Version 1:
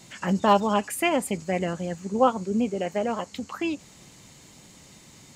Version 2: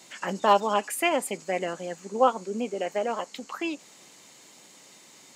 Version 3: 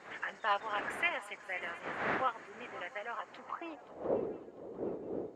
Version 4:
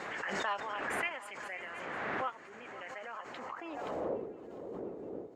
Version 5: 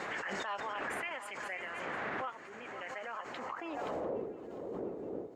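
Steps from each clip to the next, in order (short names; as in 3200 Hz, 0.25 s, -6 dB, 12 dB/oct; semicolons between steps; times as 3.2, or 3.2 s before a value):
HPF 350 Hz 12 dB/oct
wind noise 460 Hz -27 dBFS; band-pass sweep 1800 Hz -> 420 Hz, 3.02–4.3; swung echo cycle 0.701 s, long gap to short 3:1, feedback 33%, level -17 dB; gain -1 dB
backwards sustainer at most 21 dB/s; gain -4.5 dB
limiter -31 dBFS, peak gain reduction 9 dB; gain +2 dB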